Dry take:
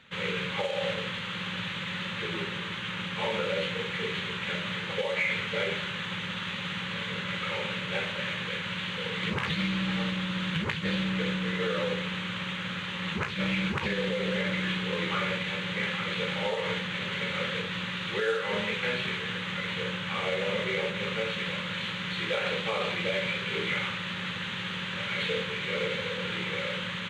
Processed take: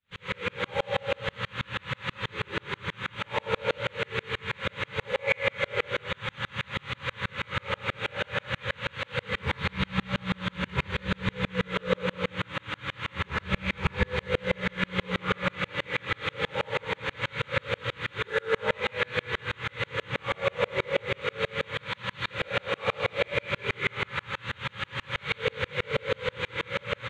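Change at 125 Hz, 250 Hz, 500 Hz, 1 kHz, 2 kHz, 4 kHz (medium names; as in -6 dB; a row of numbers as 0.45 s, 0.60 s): +0.5 dB, -4.0 dB, +1.5 dB, +2.0 dB, 0.0 dB, -3.5 dB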